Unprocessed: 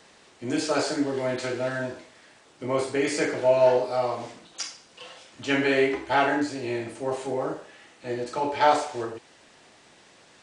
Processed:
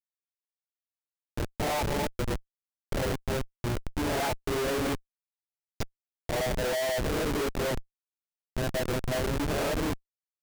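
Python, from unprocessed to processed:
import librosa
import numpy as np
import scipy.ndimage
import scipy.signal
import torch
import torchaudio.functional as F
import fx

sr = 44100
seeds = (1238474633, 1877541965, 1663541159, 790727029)

y = x[::-1].copy()
y = fx.dynamic_eq(y, sr, hz=570.0, q=1.4, threshold_db=-35.0, ratio=4.0, max_db=7)
y = fx.schmitt(y, sr, flips_db=-23.0)
y = F.gain(torch.from_numpy(y), -5.5).numpy()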